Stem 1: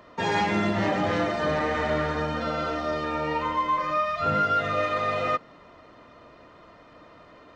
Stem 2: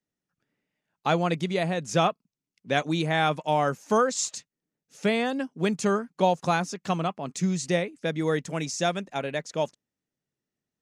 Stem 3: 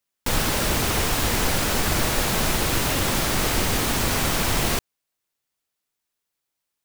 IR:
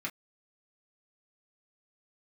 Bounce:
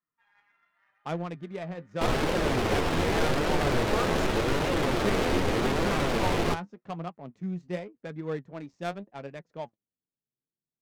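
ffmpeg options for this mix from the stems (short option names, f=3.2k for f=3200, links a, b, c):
-filter_complex "[0:a]highpass=f=1.5k:w=0.5412,highpass=f=1.5k:w=1.3066,volume=-19dB[a];[1:a]volume=-5.5dB[b];[2:a]equalizer=f=430:t=o:w=1.4:g=8,adelay=1750,volume=-1dB[c];[a][b][c]amix=inputs=3:normalize=0,flanger=delay=5.4:depth=6.7:regen=52:speed=0.85:shape=triangular,adynamicsmooth=sensitivity=5.5:basefreq=840"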